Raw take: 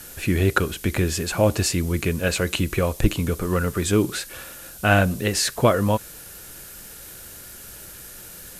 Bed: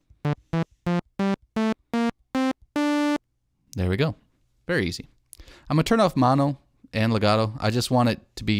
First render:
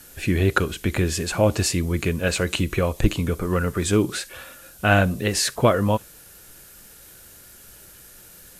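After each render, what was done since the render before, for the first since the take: noise print and reduce 6 dB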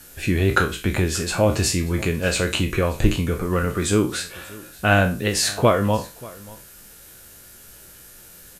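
spectral trails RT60 0.31 s; echo 0.584 s -21.5 dB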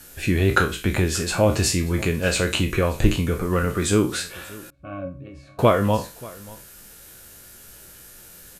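4.7–5.59 octave resonator C#, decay 0.18 s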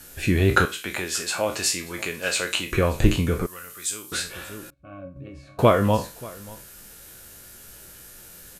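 0.65–2.72 HPF 950 Hz 6 dB/oct; 3.46–4.12 pre-emphasis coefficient 0.97; 4.74–5.16 gain -7.5 dB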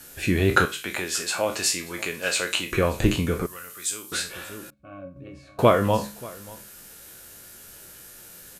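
low shelf 74 Hz -9 dB; de-hum 69.29 Hz, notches 3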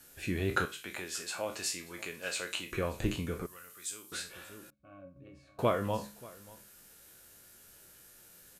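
gain -11.5 dB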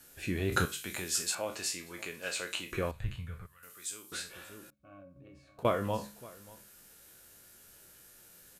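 0.52–1.35 tone controls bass +8 dB, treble +9 dB; 2.91–3.63 EQ curve 120 Hz 0 dB, 320 Hz -25 dB, 500 Hz -16 dB, 940 Hz -11 dB, 1700 Hz -5 dB, 2500 Hz -9 dB, 3800 Hz -9 dB, 5800 Hz -18 dB, 8900 Hz -14 dB; 5.01–5.65 compressor 4:1, threshold -49 dBFS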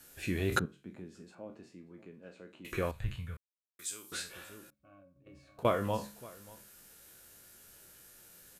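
0.59–2.65 band-pass 210 Hz, Q 1.4; 3.37–3.79 mute; 4.38–5.26 fade out, to -12 dB

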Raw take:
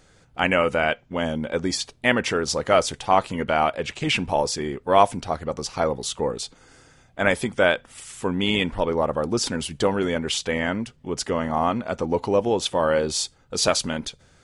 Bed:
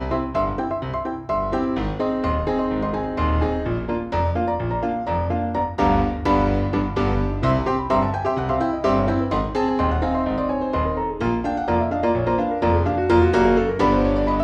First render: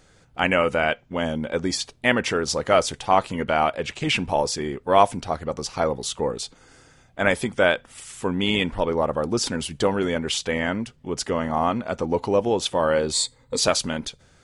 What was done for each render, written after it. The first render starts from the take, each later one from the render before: 13.13–13.59 ripple EQ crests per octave 1, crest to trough 14 dB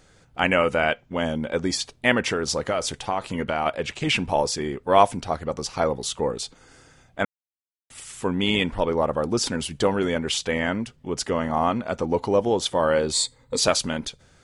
2.33–3.66 compressor 10:1, threshold -19 dBFS; 7.25–7.9 mute; 12.22–12.83 notch 2600 Hz, Q 9.5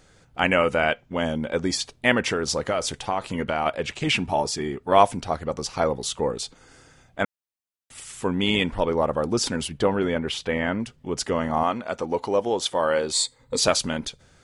4.16–4.92 notch comb 520 Hz; 9.68–10.8 bell 7400 Hz -10.5 dB 1.5 oct; 11.63–13.4 low shelf 230 Hz -10.5 dB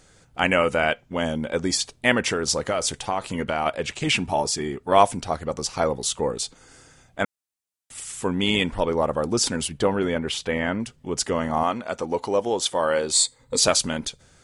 bell 8600 Hz +6 dB 1.2 oct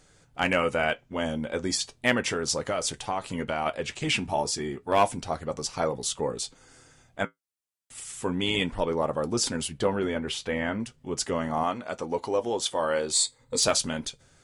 hard clip -8.5 dBFS, distortion -23 dB; flange 0.34 Hz, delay 6.6 ms, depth 2.4 ms, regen -62%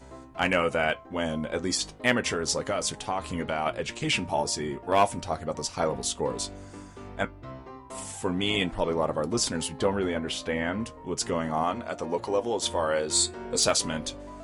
add bed -22.5 dB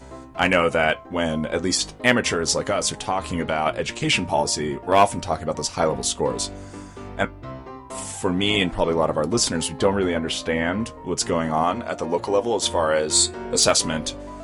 gain +6 dB

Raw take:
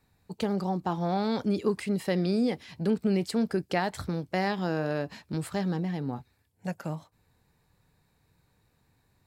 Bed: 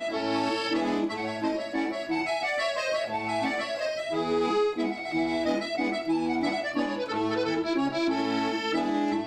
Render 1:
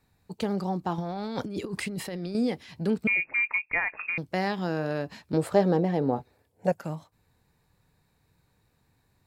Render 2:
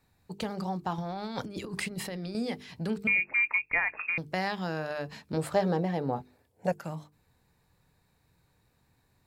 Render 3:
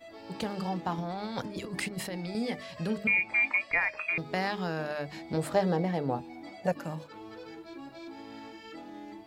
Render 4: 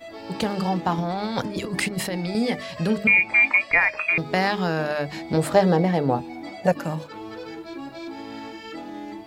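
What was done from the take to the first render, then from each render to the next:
0.98–2.35 negative-ratio compressor -33 dBFS; 3.07–4.18 inverted band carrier 2600 Hz; 5.33–6.72 bell 530 Hz +15 dB 1.6 oct
notches 50/100/150/200/250/300/350/400/450 Hz; dynamic EQ 330 Hz, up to -7 dB, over -38 dBFS, Q 0.8
add bed -18 dB
gain +9 dB

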